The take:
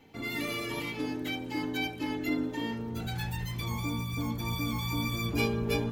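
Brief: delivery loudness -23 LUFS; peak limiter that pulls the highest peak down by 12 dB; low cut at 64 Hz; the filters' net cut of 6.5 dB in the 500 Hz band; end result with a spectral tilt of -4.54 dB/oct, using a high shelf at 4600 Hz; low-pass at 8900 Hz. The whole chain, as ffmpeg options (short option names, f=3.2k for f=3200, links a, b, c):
-af "highpass=64,lowpass=8.9k,equalizer=f=500:t=o:g=-8.5,highshelf=f=4.6k:g=6.5,volume=14dB,alimiter=limit=-15dB:level=0:latency=1"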